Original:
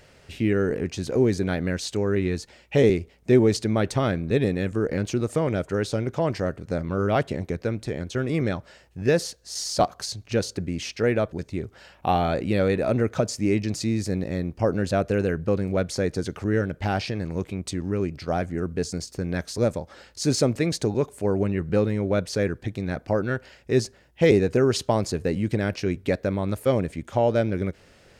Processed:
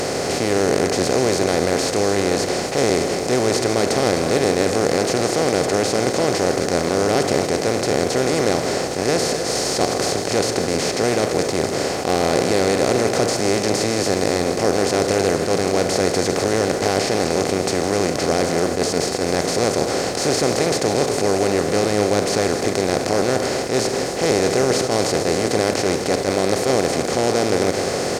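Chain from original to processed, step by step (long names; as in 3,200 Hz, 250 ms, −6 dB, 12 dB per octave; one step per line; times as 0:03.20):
compressor on every frequency bin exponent 0.2
bass and treble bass −3 dB, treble +6 dB
on a send: loudspeakers that aren't time-aligned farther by 55 metres −11 dB, 88 metres −10 dB
on the sum: level that may rise only so fast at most 140 dB per second
level −5.5 dB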